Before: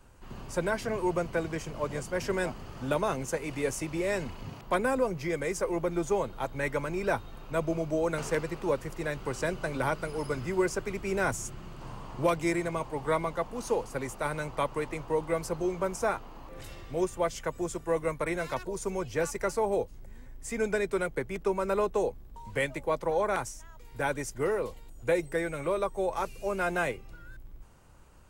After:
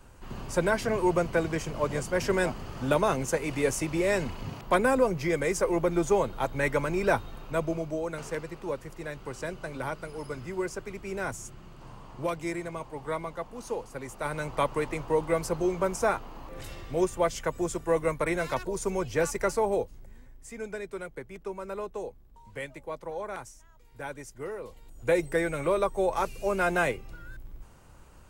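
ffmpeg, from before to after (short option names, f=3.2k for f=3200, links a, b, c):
-af "volume=23dB,afade=t=out:st=7.16:d=0.9:silence=0.375837,afade=t=in:st=14.03:d=0.58:silence=0.421697,afade=t=out:st=19.45:d=1.08:silence=0.281838,afade=t=in:st=24.63:d=0.61:silence=0.266073"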